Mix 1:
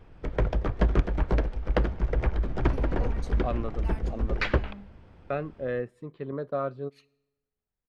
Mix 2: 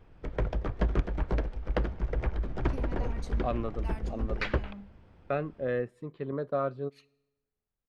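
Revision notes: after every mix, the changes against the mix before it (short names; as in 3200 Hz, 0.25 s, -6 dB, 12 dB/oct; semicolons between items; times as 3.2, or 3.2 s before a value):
background -4.5 dB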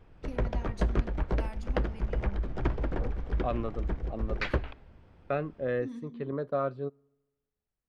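first voice: entry -2.45 s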